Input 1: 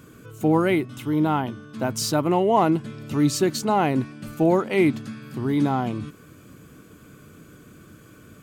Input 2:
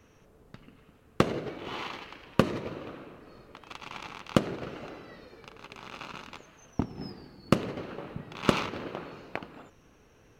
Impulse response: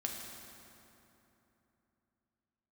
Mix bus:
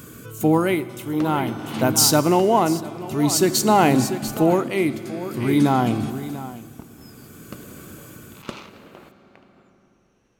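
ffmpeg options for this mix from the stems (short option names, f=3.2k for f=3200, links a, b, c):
-filter_complex "[0:a]volume=3dB,asplit=3[a][b][c];[b]volume=-9.5dB[d];[c]volume=-10dB[e];[1:a]lowpass=8.3k,aeval=exprs='val(0)*pow(10,-20*if(lt(mod(-0.55*n/s,1),2*abs(-0.55)/1000),1-mod(-0.55*n/s,1)/(2*abs(-0.55)/1000),(mod(-0.55*n/s,1)-2*abs(-0.55)/1000)/(1-2*abs(-0.55)/1000))/20)':c=same,volume=-2dB,asplit=2[f][g];[g]volume=-4.5dB[h];[2:a]atrim=start_sample=2205[i];[d][h]amix=inputs=2:normalize=0[j];[j][i]afir=irnorm=-1:irlink=0[k];[e]aecho=0:1:693:1[l];[a][f][k][l]amix=inputs=4:normalize=0,tremolo=f=0.51:d=0.6,crystalizer=i=1.5:c=0"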